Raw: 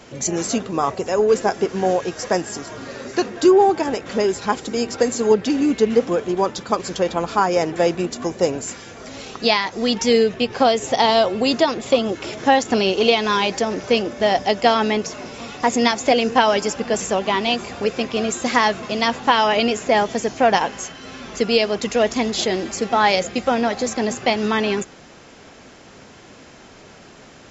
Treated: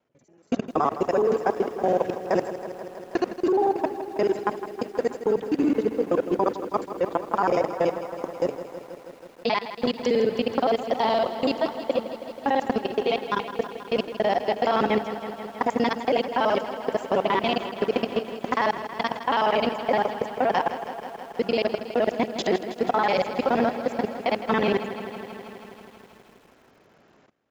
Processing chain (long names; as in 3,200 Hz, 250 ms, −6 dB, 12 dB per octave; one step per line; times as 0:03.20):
reversed piece by piece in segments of 47 ms
automatic gain control gain up to 13 dB
high-pass filter 72 Hz 6 dB per octave
low-shelf EQ 260 Hz −4.5 dB
output level in coarse steps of 18 dB
noise gate −27 dBFS, range −18 dB
low-pass filter 1,400 Hz 6 dB per octave
feedback echo at a low word length 161 ms, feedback 80%, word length 8 bits, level −12 dB
level −2 dB